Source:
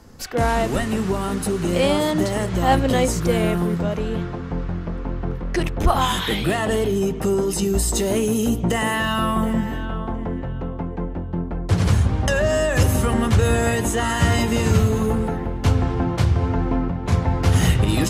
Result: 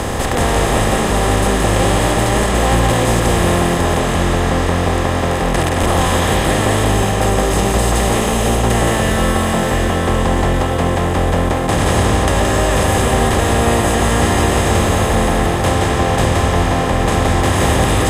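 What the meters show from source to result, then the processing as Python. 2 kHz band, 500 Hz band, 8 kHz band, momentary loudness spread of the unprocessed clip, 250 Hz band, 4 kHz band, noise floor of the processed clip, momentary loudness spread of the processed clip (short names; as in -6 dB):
+8.0 dB, +6.0 dB, +8.0 dB, 10 LU, +4.0 dB, +7.5 dB, -17 dBFS, 2 LU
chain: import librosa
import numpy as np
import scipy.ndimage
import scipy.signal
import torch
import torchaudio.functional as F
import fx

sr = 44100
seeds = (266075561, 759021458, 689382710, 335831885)

p1 = fx.bin_compress(x, sr, power=0.2)
p2 = p1 + fx.echo_single(p1, sr, ms=172, db=-4.5, dry=0)
y = p2 * 10.0 ** (-6.5 / 20.0)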